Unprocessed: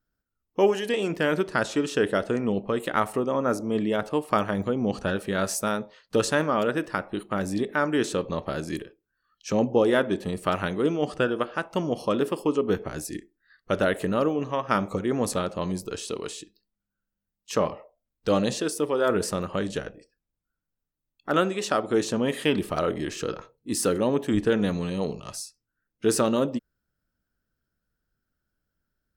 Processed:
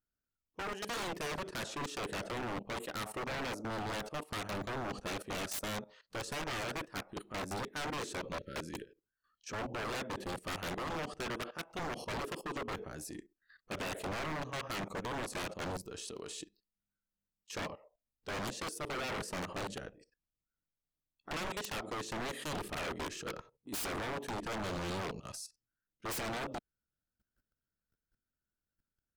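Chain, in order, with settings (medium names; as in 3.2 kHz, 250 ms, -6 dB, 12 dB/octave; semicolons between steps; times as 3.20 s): transient shaper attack -10 dB, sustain -6 dB; spectral replace 8.35–9.03 s, 600–1300 Hz after; level held to a coarse grid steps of 16 dB; wavefolder -36 dBFS; trim +3 dB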